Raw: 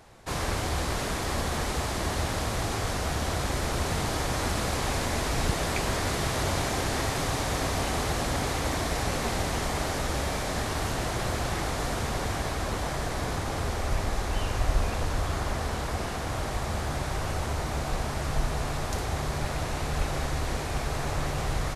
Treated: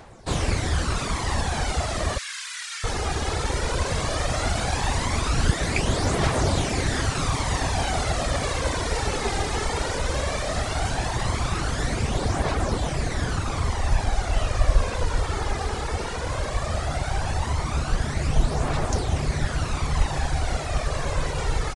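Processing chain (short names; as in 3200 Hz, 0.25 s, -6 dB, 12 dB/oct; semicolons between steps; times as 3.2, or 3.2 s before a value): reverb removal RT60 0.64 s; 2.18–2.84 inverse Chebyshev high-pass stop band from 600 Hz, stop band 50 dB; phaser 0.16 Hz, delay 2.5 ms, feedback 43%; downsampling 22050 Hz; gain +4 dB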